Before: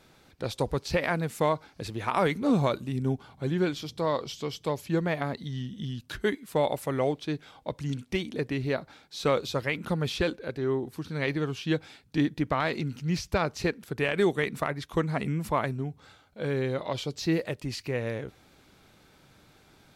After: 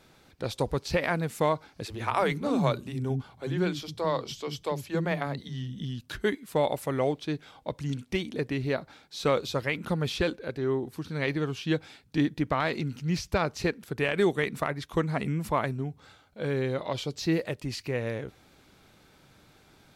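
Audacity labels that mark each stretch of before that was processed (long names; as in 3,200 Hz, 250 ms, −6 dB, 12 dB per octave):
1.850000	5.810000	multiband delay without the direct sound highs, lows 50 ms, split 280 Hz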